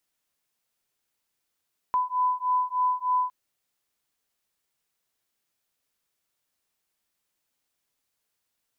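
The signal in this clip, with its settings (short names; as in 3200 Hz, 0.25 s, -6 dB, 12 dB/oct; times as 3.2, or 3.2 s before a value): beating tones 1000 Hz, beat 3.3 Hz, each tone -25.5 dBFS 1.36 s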